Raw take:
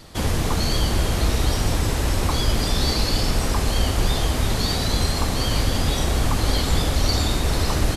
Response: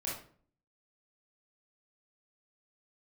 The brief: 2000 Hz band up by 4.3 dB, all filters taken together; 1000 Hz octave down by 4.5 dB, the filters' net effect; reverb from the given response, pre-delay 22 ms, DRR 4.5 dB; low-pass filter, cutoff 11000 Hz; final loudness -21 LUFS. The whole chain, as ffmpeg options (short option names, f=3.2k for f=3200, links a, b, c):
-filter_complex "[0:a]lowpass=11k,equalizer=f=1k:t=o:g=-8,equalizer=f=2k:t=o:g=7.5,asplit=2[a][b];[1:a]atrim=start_sample=2205,adelay=22[c];[b][c]afir=irnorm=-1:irlink=0,volume=-7dB[d];[a][d]amix=inputs=2:normalize=0,volume=-0.5dB"